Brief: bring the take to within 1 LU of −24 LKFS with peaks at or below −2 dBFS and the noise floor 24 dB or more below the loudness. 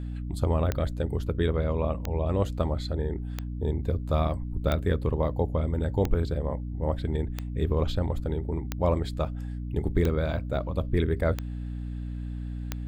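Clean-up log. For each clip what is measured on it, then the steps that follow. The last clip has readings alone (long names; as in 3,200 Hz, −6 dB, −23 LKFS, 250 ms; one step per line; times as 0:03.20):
number of clicks 10; mains hum 60 Hz; hum harmonics up to 300 Hz; level of the hum −31 dBFS; integrated loudness −29.0 LKFS; sample peak −10.0 dBFS; target loudness −24.0 LKFS
→ click removal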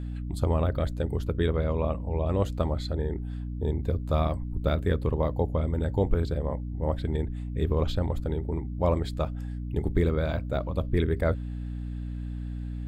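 number of clicks 0; mains hum 60 Hz; hum harmonics up to 300 Hz; level of the hum −31 dBFS
→ mains-hum notches 60/120/180/240/300 Hz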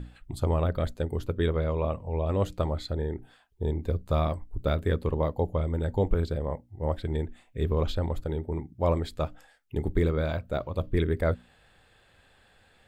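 mains hum none found; integrated loudness −29.5 LKFS; sample peak −10.5 dBFS; target loudness −24.0 LKFS
→ level +5.5 dB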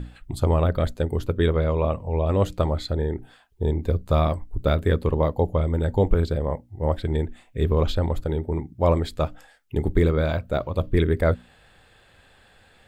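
integrated loudness −24.5 LKFS; sample peak −5.5 dBFS; background noise floor −56 dBFS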